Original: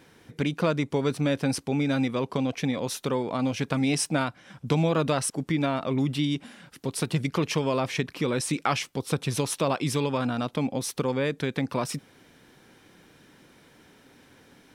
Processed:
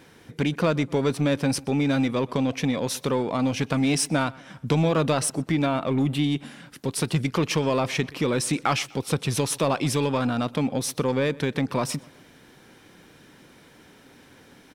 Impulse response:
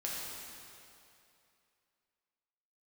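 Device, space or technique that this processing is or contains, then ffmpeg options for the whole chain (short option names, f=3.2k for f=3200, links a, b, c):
parallel distortion: -filter_complex "[0:a]asettb=1/sr,asplit=3[a][b][c];[a]atrim=end=5.774[d];[b]atrim=start=5.77:end=6.41,asetpts=PTS-STARTPTS,afade=t=in:d=0.004:c=qsin,afade=t=out:st=0.636:d=0.004:c=qsin,equalizer=f=5.3k:w=2.7:g=-10[e];[c]atrim=start=6.406[f];[d][e]acrossfade=d=0.004:c1=hsin:c2=qsin[g];[g][f]acrossfade=d=0.004:c1=qsin:c2=hsin,asplit=2[h][i];[i]asoftclip=type=hard:threshold=-25.5dB,volume=-6dB[j];[h][j]amix=inputs=2:normalize=0,asplit=2[k][l];[l]adelay=125,lowpass=f=3.7k:p=1,volume=-22dB,asplit=2[m][n];[n]adelay=125,lowpass=f=3.7k:p=1,volume=0.45,asplit=2[o][p];[p]adelay=125,lowpass=f=3.7k:p=1,volume=0.45[q];[k][m][o][q]amix=inputs=4:normalize=0"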